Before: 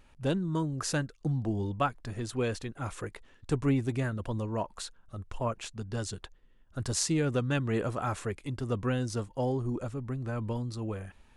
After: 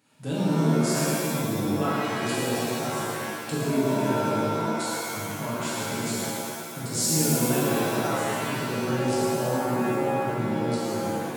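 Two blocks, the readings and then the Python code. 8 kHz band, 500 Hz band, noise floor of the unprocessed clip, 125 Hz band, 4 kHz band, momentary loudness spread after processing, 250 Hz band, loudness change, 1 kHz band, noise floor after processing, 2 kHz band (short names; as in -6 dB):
+10.0 dB, +7.5 dB, -60 dBFS, +2.0 dB, +9.0 dB, 8 LU, +7.0 dB, +6.5 dB, +9.5 dB, -35 dBFS, +9.0 dB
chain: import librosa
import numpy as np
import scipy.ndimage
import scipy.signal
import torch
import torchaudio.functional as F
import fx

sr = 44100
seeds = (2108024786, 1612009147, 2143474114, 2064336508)

y = fx.recorder_agc(x, sr, target_db=-25.0, rise_db_per_s=28.0, max_gain_db=30)
y = scipy.signal.sosfilt(scipy.signal.butter(4, 160.0, 'highpass', fs=sr, output='sos'), y)
y = fx.bass_treble(y, sr, bass_db=7, treble_db=8)
y = fx.notch(y, sr, hz=6000.0, q=14.0)
y = y + 10.0 ** (-6.5 / 20.0) * np.pad(y, (int(112 * sr / 1000.0), 0))[:len(y)]
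y = fx.rev_shimmer(y, sr, seeds[0], rt60_s=1.9, semitones=7, shimmer_db=-2, drr_db=-7.5)
y = F.gain(torch.from_numpy(y), -8.0).numpy()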